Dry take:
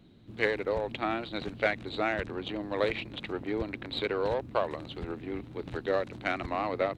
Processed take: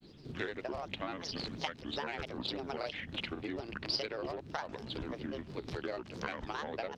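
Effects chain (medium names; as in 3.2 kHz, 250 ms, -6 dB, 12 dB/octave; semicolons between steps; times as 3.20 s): granulator, grains 20 per s, spray 28 ms, pitch spread up and down by 7 st; compression 6:1, threshold -39 dBFS, peak gain reduction 15 dB; peaking EQ 5.1 kHz +7 dB 1.5 oct; trim +2.5 dB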